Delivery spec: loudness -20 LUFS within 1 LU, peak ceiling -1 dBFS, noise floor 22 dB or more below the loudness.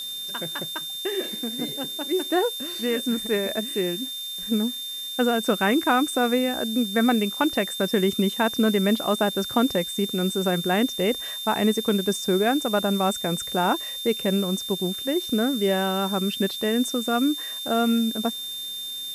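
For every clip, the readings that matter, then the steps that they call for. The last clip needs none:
steady tone 3.6 kHz; tone level -31 dBFS; noise floor -33 dBFS; noise floor target -46 dBFS; loudness -24.0 LUFS; peak level -8.5 dBFS; loudness target -20.0 LUFS
-> band-stop 3.6 kHz, Q 30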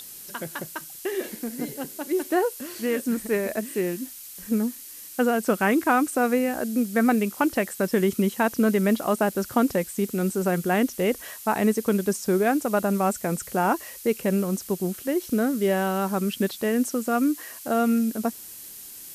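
steady tone not found; noise floor -42 dBFS; noise floor target -47 dBFS
-> noise reduction 6 dB, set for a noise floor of -42 dBFS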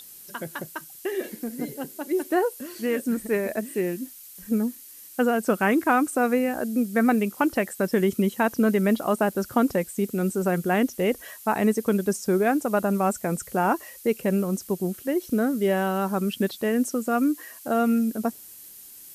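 noise floor -45 dBFS; noise floor target -47 dBFS
-> noise reduction 6 dB, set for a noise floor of -45 dBFS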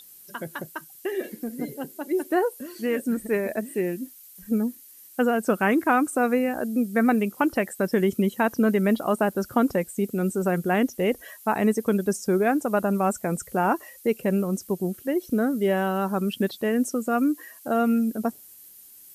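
noise floor -49 dBFS; loudness -25.0 LUFS; peak level -8.5 dBFS; loudness target -20.0 LUFS
-> trim +5 dB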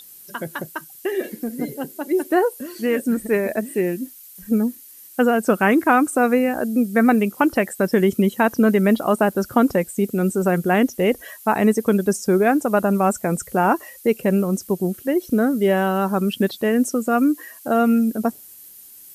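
loudness -20.0 LUFS; peak level -3.5 dBFS; noise floor -44 dBFS

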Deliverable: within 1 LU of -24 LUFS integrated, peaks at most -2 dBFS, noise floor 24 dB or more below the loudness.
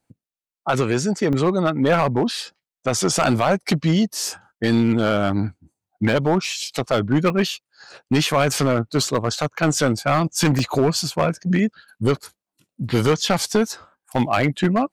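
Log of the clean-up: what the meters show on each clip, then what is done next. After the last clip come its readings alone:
clipped samples 1.5%; clipping level -11.0 dBFS; dropouts 6; longest dropout 1.7 ms; loudness -21.0 LUFS; peak level -11.0 dBFS; loudness target -24.0 LUFS
-> clip repair -11 dBFS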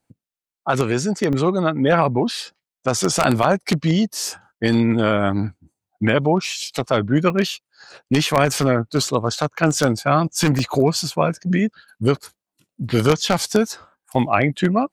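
clipped samples 0.0%; dropouts 6; longest dropout 1.7 ms
-> interpolate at 1.33/6.45/7.30/9.07/10.59/14.15 s, 1.7 ms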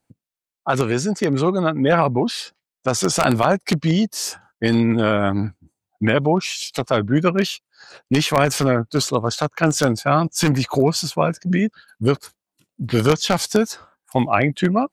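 dropouts 0; loudness -20.0 LUFS; peak level -2.0 dBFS; loudness target -24.0 LUFS
-> trim -4 dB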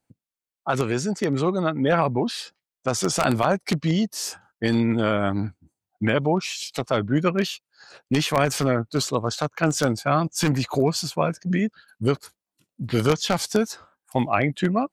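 loudness -24.0 LUFS; peak level -6.0 dBFS; noise floor -91 dBFS

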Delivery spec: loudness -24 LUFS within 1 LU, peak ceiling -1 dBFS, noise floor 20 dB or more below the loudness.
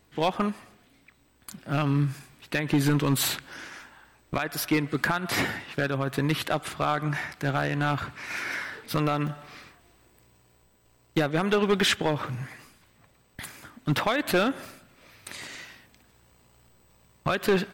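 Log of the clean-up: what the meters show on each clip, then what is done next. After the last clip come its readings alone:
clipped samples 0.8%; clipping level -16.5 dBFS; dropouts 2; longest dropout 4.0 ms; loudness -27.5 LUFS; peak level -16.5 dBFS; loudness target -24.0 LUFS
-> clip repair -16.5 dBFS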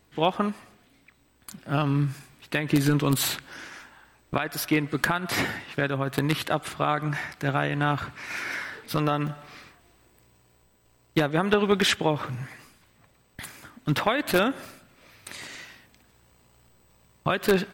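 clipped samples 0.0%; dropouts 2; longest dropout 4.0 ms
-> interpolate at 9.27/12.27 s, 4 ms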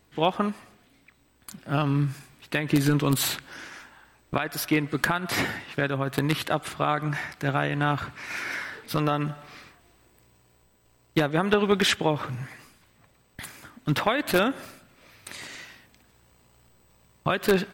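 dropouts 0; loudness -26.5 LUFS; peak level -7.5 dBFS; loudness target -24.0 LUFS
-> trim +2.5 dB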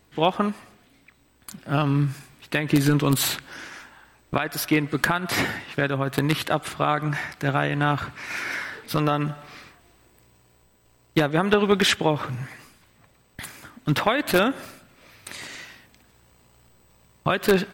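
loudness -24.0 LUFS; peak level -5.0 dBFS; noise floor -60 dBFS

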